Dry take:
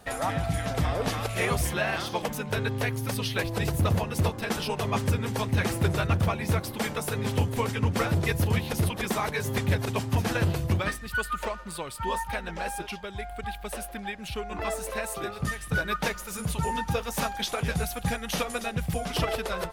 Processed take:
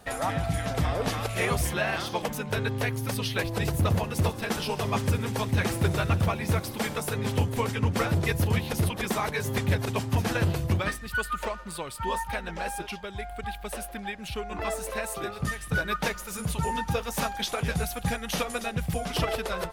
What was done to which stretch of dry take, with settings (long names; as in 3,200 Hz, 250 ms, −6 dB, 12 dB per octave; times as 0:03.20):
0:03.89–0:07.01: delay with a high-pass on its return 66 ms, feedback 79%, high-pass 3,500 Hz, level −14 dB